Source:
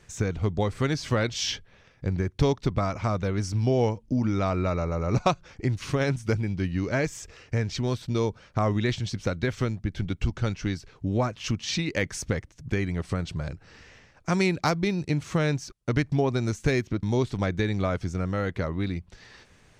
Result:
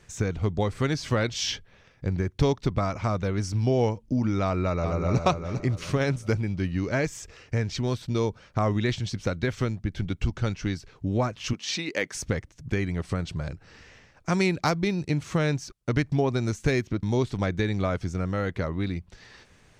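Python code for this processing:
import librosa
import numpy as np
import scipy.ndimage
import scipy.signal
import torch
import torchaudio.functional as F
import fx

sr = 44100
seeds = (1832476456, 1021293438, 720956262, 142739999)

y = fx.echo_throw(x, sr, start_s=4.43, length_s=0.77, ms=400, feedback_pct=35, wet_db=-6.5)
y = fx.highpass(y, sr, hz=280.0, slope=12, at=(11.53, 12.15))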